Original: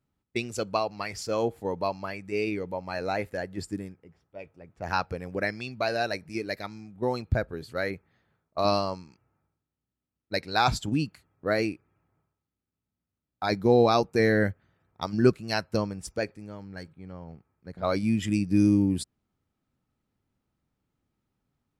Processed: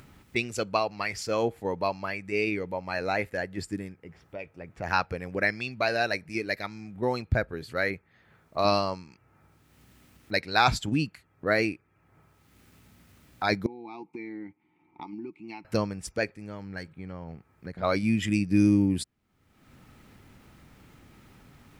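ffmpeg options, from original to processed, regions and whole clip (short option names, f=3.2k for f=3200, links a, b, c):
-filter_complex "[0:a]asettb=1/sr,asplit=3[a][b][c];[a]atrim=end=13.664[d];[b]atrim=start=13.66:end=15.65,asetpts=PTS-STARTPTS,afade=t=in:d=0.004:c=qsin,afade=t=out:st=1.986:d=0.004:c=qsin,aecho=1:1:5.6:0.31,atrim=end_sample=87759,acompressor=threshold=-28dB:ratio=3:attack=3.2:release=140:knee=1:detection=peak,asplit=3[e][f][g];[e]bandpass=f=300:t=q:w=8,volume=0dB[h];[f]bandpass=f=870:t=q:w=8,volume=-6dB[i];[g]bandpass=f=2.24k:t=q:w=8,volume=-9dB[j];[h][i][j]amix=inputs=3:normalize=0[k];[c]atrim=start=15.646[l];[d][k]acrossfade=d=0.004:c1=hsin:c2=qsin[m];[m][l]acrossfade=d=0.004:c1=qsin:c2=hsin,equalizer=f=2.1k:w=1.2:g=6,acompressor=mode=upward:threshold=-33dB:ratio=2.5"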